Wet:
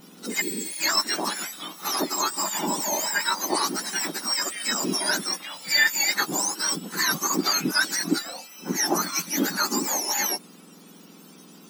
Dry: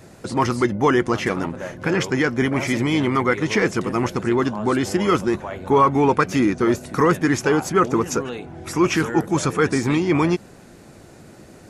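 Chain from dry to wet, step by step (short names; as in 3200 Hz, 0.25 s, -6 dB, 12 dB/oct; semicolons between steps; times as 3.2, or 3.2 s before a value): spectrum mirrored in octaves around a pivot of 1400 Hz; reverse echo 71 ms -19 dB; spectral repair 0.44–0.72, 510–6300 Hz after; gain -1 dB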